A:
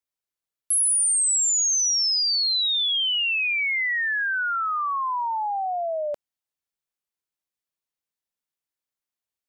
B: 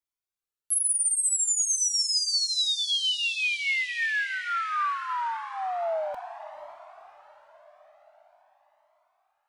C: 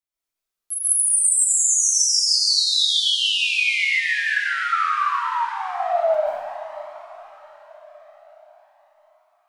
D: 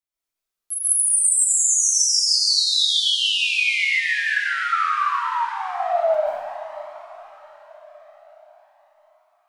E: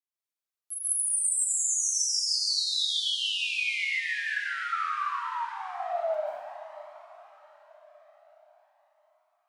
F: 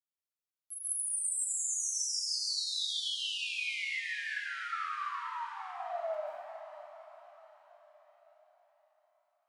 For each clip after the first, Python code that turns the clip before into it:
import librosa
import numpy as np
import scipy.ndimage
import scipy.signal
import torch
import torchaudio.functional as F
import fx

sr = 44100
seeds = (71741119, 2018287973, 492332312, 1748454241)

y1 = fx.echo_diffused(x, sr, ms=499, feedback_pct=51, wet_db=-11)
y1 = fx.comb_cascade(y1, sr, direction='rising', hz=0.45)
y2 = fx.rev_freeverb(y1, sr, rt60_s=0.99, hf_ratio=1.0, predelay_ms=100, drr_db=-8.5)
y2 = F.gain(torch.from_numpy(y2), -2.0).numpy()
y3 = y2
y4 = fx.highpass(y3, sr, hz=320.0, slope=6)
y4 = F.gain(torch.from_numpy(y4), -9.0).numpy()
y5 = fx.echo_feedback(y4, sr, ms=444, feedback_pct=54, wet_db=-13.0)
y5 = F.gain(torch.from_numpy(y5), -7.0).numpy()